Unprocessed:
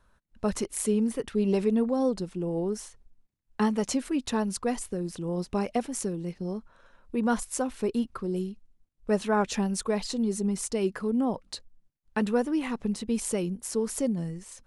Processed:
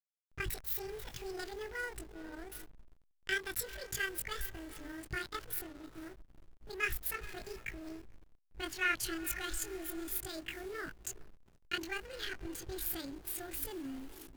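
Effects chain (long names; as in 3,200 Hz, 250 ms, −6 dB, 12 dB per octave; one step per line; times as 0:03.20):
gliding playback speed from 189% → 158%
drawn EQ curve 130 Hz 0 dB, 420 Hz −21 dB, 1,000 Hz −29 dB, 1,500 Hz −4 dB
time stretch by overlap-add 1.7×, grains 90 ms
feedback delay with all-pass diffusion 458 ms, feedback 44%, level −13 dB
slack as between gear wheels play −44.5 dBFS
level +3.5 dB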